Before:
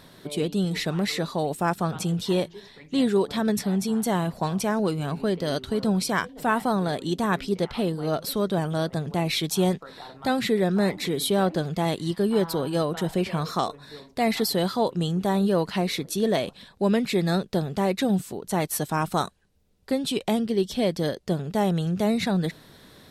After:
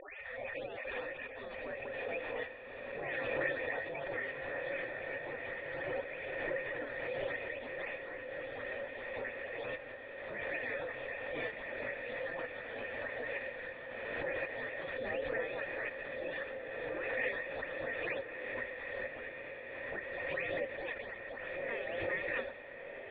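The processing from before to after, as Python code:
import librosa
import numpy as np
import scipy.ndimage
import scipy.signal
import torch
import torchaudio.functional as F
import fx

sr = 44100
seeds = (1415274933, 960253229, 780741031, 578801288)

y = fx.spec_delay(x, sr, highs='late', ms=406)
y = fx.hum_notches(y, sr, base_hz=50, count=8)
y = fx.spec_gate(y, sr, threshold_db=-25, keep='weak')
y = fx.formant_cascade(y, sr, vowel='e')
y = fx.echo_diffused(y, sr, ms=1365, feedback_pct=45, wet_db=-5.5)
y = fx.pre_swell(y, sr, db_per_s=24.0)
y = y * 10.0 ** (17.5 / 20.0)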